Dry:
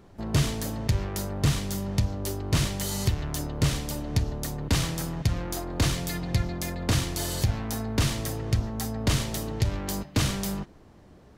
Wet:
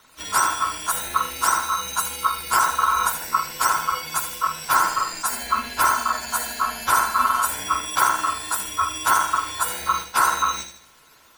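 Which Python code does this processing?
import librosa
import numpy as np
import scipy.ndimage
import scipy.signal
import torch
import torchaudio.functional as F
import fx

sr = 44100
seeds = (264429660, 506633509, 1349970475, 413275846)

y = fx.octave_mirror(x, sr, pivot_hz=1000.0)
y = fx.echo_thinned(y, sr, ms=78, feedback_pct=41, hz=380.0, wet_db=-8.0)
y = y * np.sin(2.0 * np.pi * 1200.0 * np.arange(len(y)) / sr)
y = y * librosa.db_to_amplitude(7.5)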